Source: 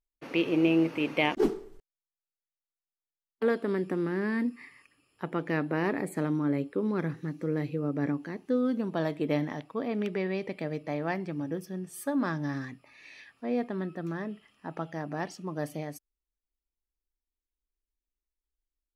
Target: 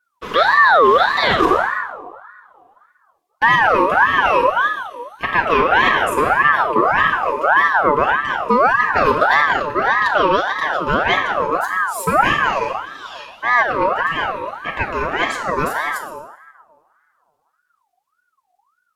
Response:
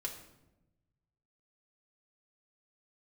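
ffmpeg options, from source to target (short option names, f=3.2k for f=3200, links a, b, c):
-filter_complex "[1:a]atrim=start_sample=2205,asetrate=31311,aresample=44100[a];[0:a][a]afir=irnorm=-1:irlink=0,alimiter=level_in=17dB:limit=-1dB:release=50:level=0:latency=1,aeval=exprs='val(0)*sin(2*PI*1100*n/s+1100*0.35/1.7*sin(2*PI*1.7*n/s))':c=same,volume=-1.5dB"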